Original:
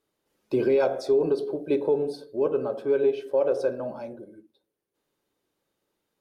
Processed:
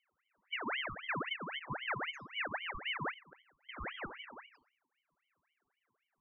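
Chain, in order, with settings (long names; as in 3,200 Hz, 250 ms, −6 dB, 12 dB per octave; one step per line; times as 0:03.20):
mu-law and A-law mismatch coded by mu
0:01.13–0:02.00: comb filter 1.6 ms, depth 63%
downward compressor 5 to 1, threshold −27 dBFS, peak gain reduction 9 dB
spectral peaks only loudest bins 4
0:03.11–0:03.69: gate with flip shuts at −31 dBFS, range −33 dB
on a send at −12 dB: convolution reverb RT60 0.65 s, pre-delay 4 ms
on the sum: ring modulator whose carrier an LFO sweeps 1,600 Hz, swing 65%, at 3.8 Hz
level −5 dB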